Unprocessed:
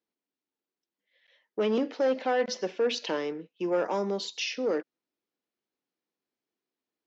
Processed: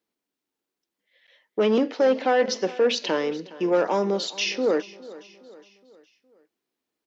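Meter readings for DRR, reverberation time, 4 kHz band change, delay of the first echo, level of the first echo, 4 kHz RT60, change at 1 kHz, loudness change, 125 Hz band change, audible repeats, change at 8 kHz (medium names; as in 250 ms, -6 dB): no reverb, no reverb, +6.0 dB, 414 ms, -19.0 dB, no reverb, +6.0 dB, +6.0 dB, +6.0 dB, 3, no reading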